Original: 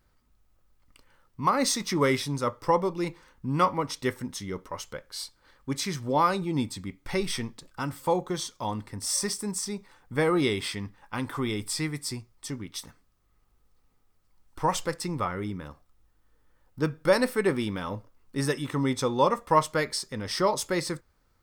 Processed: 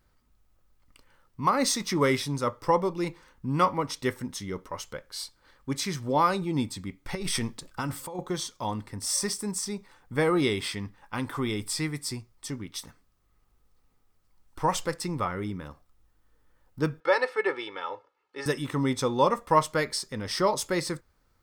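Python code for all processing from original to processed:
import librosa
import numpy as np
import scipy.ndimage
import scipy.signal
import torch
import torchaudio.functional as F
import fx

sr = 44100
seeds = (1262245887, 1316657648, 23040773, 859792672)

y = fx.chain(x, sr, fx.over_compress(threshold_db=-32.0, ratio=-1.0),
    fx.dynamic_eq(hz=9400.0, q=1.0, threshold_db=-48.0, ratio=4.0, max_db=6), at=(7.15, 8.19))
y = fx.chain(y, sr, fx.bandpass_edges(low_hz=570.0, high_hz=3300.0),
    fx.comb(ms=2.3, depth=0.72), at=(17.0, 18.46))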